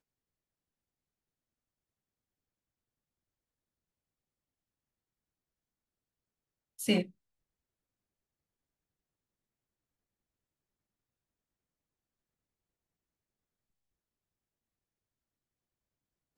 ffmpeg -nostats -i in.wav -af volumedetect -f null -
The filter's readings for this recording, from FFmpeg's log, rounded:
mean_volume: -46.6 dB
max_volume: -15.4 dB